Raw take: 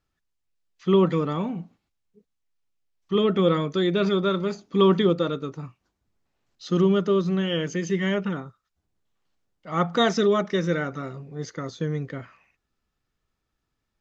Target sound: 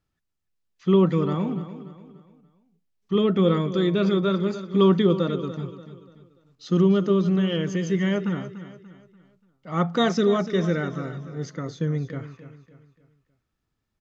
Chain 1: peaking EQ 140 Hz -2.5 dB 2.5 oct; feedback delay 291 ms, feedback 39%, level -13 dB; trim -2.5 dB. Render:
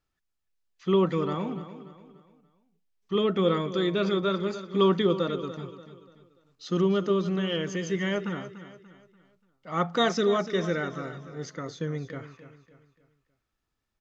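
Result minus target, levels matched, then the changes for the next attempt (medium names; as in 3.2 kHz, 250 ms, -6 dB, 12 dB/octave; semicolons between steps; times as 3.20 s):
125 Hz band -3.5 dB
change: peaking EQ 140 Hz +5.5 dB 2.5 oct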